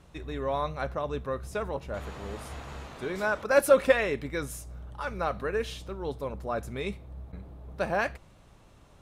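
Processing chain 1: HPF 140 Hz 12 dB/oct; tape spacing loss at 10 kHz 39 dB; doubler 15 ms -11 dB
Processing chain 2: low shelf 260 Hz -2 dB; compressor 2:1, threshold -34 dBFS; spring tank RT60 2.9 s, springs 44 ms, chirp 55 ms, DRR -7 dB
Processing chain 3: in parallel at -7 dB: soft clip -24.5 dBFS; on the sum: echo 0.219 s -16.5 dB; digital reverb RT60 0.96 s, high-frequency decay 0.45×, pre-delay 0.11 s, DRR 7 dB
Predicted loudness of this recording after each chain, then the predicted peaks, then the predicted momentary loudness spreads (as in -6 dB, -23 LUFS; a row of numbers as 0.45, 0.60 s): -32.5, -29.5, -27.5 LUFS; -10.0, -13.0, -5.0 dBFS; 20, 9, 16 LU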